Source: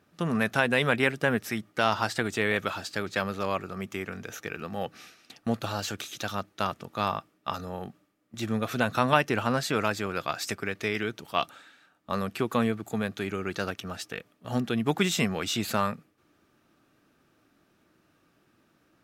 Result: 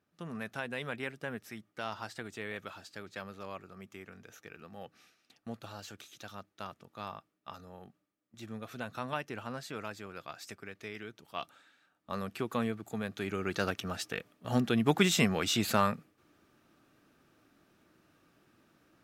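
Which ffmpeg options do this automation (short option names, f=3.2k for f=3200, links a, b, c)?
-af "volume=-0.5dB,afade=t=in:st=11.14:d=1.11:silence=0.446684,afade=t=in:st=13.03:d=0.63:silence=0.473151"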